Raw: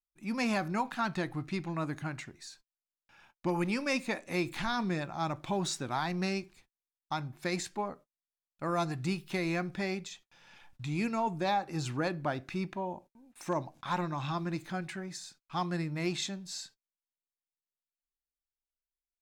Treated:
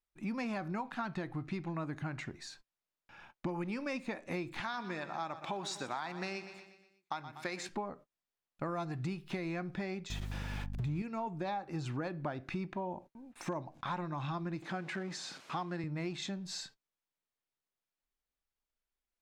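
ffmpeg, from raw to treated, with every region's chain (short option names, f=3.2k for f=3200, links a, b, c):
-filter_complex "[0:a]asettb=1/sr,asplit=3[a][b][c];[a]atrim=end=4.604[d];[b]atrim=start=4.6:end=7.69,asetpts=PTS-STARTPTS,afade=t=in:d=0.004:c=qsin,afade=t=out:st=3.086:d=0.004:c=qsin,highpass=f=730:p=1,aecho=1:1:121|242|363|484|605:0.188|0.0942|0.0471|0.0235|0.0118,atrim=end_sample=136269[e];[c]atrim=start=7.686[f];[d][e]acrossfade=d=0.004:c1=hsin:c2=qsin[g];[g][f]acrossfade=d=0.004:c1=qsin:c2=hsin,asettb=1/sr,asplit=3[h][i][j];[h]atrim=end=10.104[k];[i]atrim=start=10.1:end=11.02,asetpts=PTS-STARTPTS,afade=t=in:d=0.004:c=qsin,afade=t=out:st=0.916:d=0.004:c=qsin,aeval=exprs='val(0)+0.5*0.00944*sgn(val(0))':c=same,aeval=exprs='val(0)+0.00447*(sin(2*PI*50*n/s)+sin(2*PI*2*50*n/s)/2+sin(2*PI*3*50*n/s)/3+sin(2*PI*4*50*n/s)/4+sin(2*PI*5*50*n/s)/5)':c=same,equalizer=f=100:w=0.37:g=9.5[l];[j]atrim=start=11.016[m];[k][l]acrossfade=d=0.004:c1=hsin:c2=qsin[n];[n][m]acrossfade=d=0.004:c1=qsin:c2=hsin,asettb=1/sr,asplit=3[o][p][q];[o]atrim=end=14.624[r];[p]atrim=start=14.62:end=15.84,asetpts=PTS-STARTPTS,afade=t=in:d=0.004:c=qsin,afade=t=out:st=1.216:d=0.004:c=qsin,aeval=exprs='val(0)+0.5*0.00596*sgn(val(0))':c=same,highpass=200,lowpass=8k[s];[q]atrim=start=15.836[t];[r][s]acrossfade=d=0.004:c1=hsin:c2=qsin[u];[u][t]acrossfade=d=0.004:c1=qsin:c2=hsin,lowpass=f=2.5k:p=1,acompressor=threshold=-42dB:ratio=6,volume=6.5dB"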